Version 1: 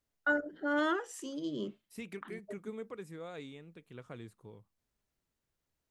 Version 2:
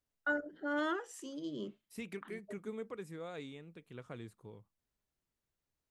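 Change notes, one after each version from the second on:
first voice −4.0 dB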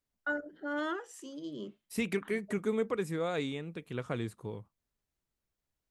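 second voice +11.5 dB

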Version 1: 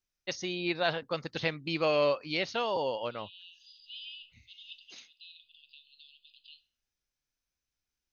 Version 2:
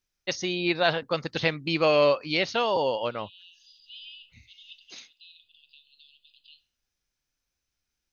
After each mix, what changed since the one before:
first voice +6.0 dB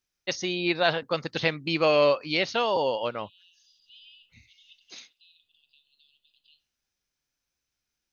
second voice −7.5 dB
master: add low-shelf EQ 60 Hz −9.5 dB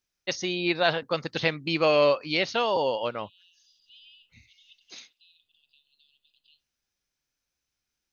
second voice: send −7.0 dB

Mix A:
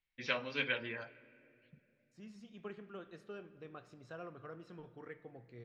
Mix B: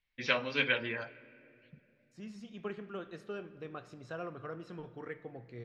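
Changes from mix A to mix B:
first voice +5.5 dB
second voice +6.5 dB

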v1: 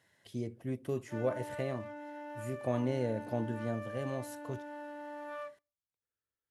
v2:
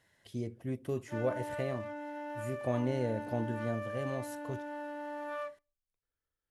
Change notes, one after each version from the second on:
background +3.5 dB
master: remove high-pass filter 86 Hz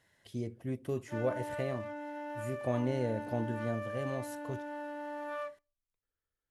nothing changed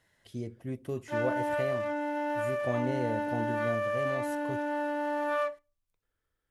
background +9.5 dB

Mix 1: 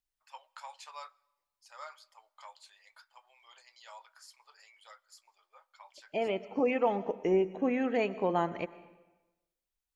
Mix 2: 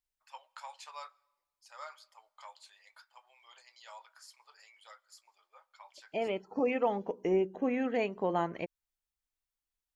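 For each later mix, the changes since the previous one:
second voice: send off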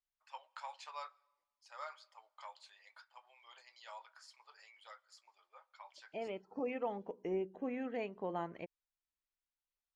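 second voice −8.5 dB
master: add high-frequency loss of the air 80 metres

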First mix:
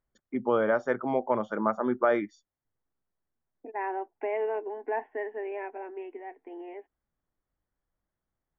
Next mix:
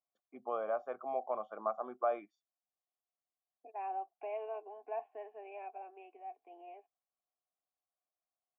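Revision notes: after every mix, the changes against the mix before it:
second voice: remove band-pass filter 110–2,100 Hz
master: add formant filter a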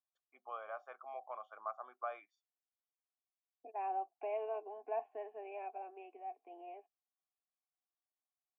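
first voice: add high-pass filter 1,300 Hz 12 dB per octave
master: add low-shelf EQ 460 Hz +4 dB

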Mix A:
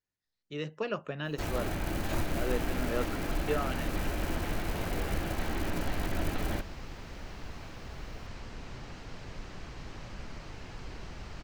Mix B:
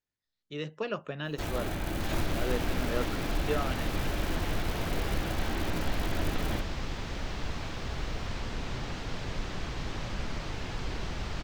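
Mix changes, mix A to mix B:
second sound +8.0 dB
master: add parametric band 3,500 Hz +4.5 dB 0.27 octaves

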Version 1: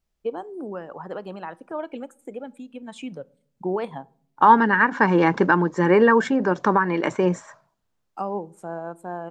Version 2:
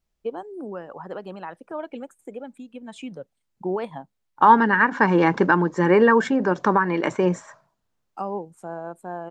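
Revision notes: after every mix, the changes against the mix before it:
reverb: off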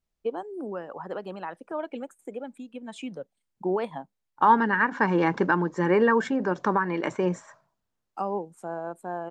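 first voice: add high-pass filter 160 Hz
second voice −5.0 dB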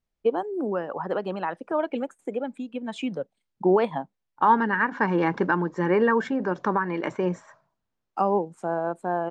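first voice +7.0 dB
master: add high-frequency loss of the air 76 metres

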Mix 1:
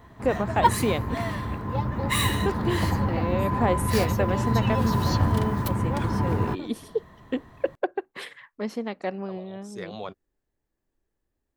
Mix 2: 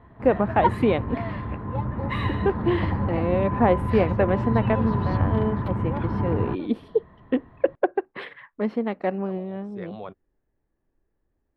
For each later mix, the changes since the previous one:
first voice +6.0 dB
background: add high-shelf EQ 7,000 Hz −6.5 dB
master: add high-frequency loss of the air 440 metres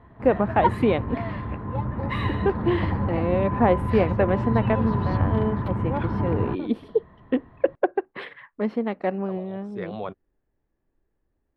second voice +5.0 dB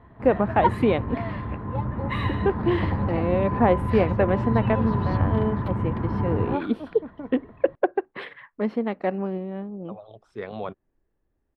second voice: entry +0.60 s

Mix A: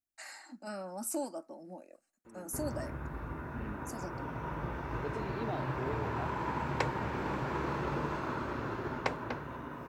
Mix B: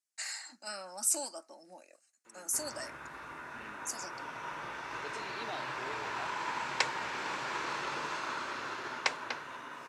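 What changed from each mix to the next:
master: add meter weighting curve ITU-R 468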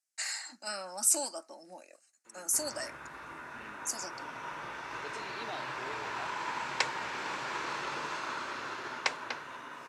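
first voice +3.5 dB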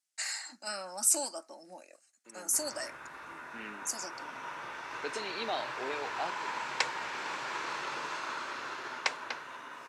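second voice +8.0 dB
background: add low-shelf EQ 260 Hz −7.5 dB

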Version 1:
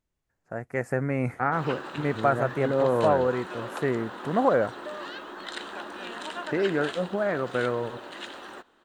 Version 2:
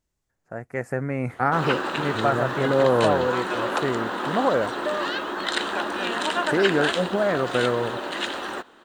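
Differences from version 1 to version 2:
second voice: remove transistor ladder low-pass 3,800 Hz, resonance 25%
background +11.0 dB
reverb: off

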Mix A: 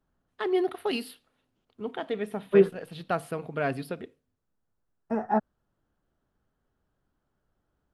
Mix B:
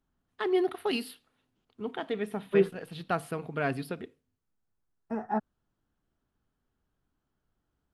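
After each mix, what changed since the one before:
second voice −4.0 dB
master: add parametric band 570 Hz −4.5 dB 0.52 octaves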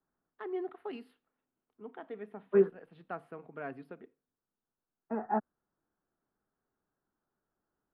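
first voice −10.0 dB
master: add three-way crossover with the lows and the highs turned down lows −13 dB, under 190 Hz, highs −22 dB, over 2,200 Hz

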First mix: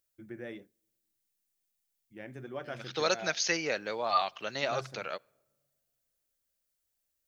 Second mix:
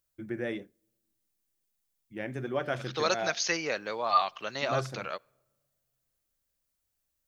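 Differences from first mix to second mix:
first voice +8.5 dB
second voice: add parametric band 1,100 Hz +5 dB 0.43 octaves

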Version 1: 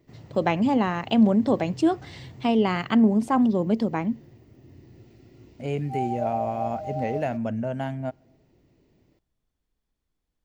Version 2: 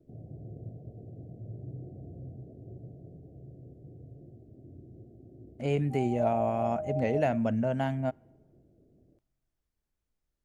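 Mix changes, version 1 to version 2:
first voice: muted
background: add Butterworth low-pass 730 Hz 96 dB per octave

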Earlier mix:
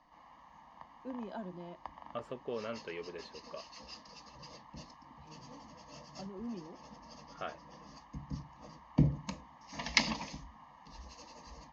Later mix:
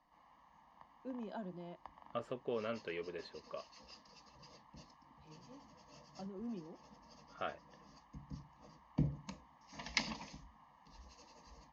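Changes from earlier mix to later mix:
background −5.0 dB
reverb: off

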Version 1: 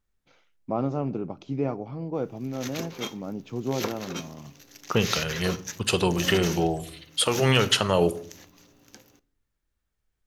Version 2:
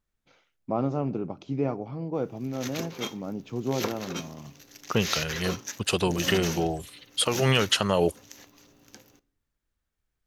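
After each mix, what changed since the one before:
second voice: send off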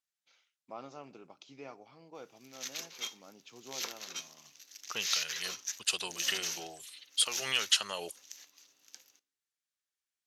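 master: add resonant band-pass 6,300 Hz, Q 0.63

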